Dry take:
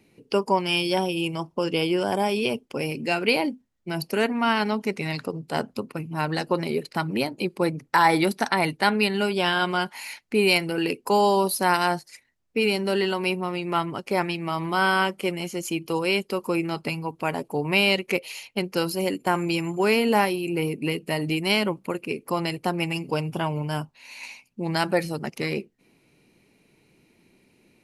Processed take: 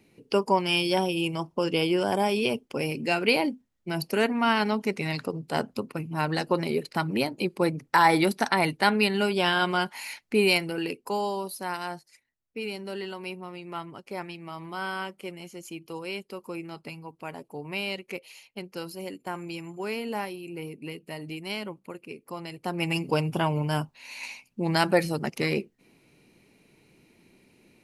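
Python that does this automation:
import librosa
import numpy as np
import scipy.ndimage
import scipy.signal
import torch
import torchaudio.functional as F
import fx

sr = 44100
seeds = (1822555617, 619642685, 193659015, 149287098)

y = fx.gain(x, sr, db=fx.line((10.38, -1.0), (11.46, -11.5), (22.49, -11.5), (22.93, 1.0)))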